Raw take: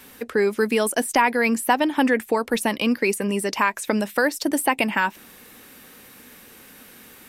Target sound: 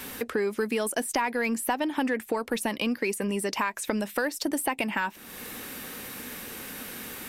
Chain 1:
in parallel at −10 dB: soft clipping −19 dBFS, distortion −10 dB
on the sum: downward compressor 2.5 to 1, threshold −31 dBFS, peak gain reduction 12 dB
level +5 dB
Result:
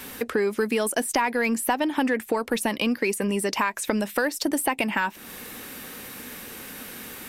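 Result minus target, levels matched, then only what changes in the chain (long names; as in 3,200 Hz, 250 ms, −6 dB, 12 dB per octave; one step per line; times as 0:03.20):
downward compressor: peak gain reduction −3.5 dB
change: downward compressor 2.5 to 1, threshold −37 dBFS, peak gain reduction 16 dB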